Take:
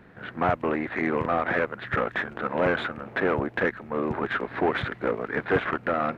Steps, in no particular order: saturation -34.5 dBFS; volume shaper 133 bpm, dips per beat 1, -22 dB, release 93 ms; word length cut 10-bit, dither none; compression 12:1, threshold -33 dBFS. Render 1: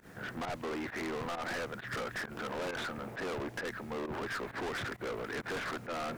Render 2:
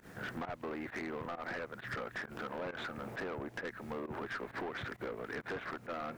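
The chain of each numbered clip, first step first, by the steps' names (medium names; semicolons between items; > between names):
word length cut > volume shaper > saturation > compression; word length cut > volume shaper > compression > saturation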